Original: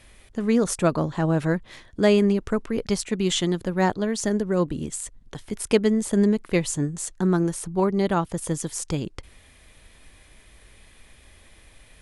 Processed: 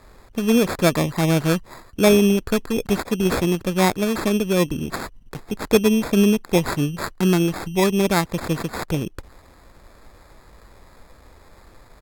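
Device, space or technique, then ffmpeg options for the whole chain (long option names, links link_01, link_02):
crushed at another speed: -af "asetrate=55125,aresample=44100,acrusher=samples=12:mix=1:aa=0.000001,asetrate=35280,aresample=44100,volume=3.5dB"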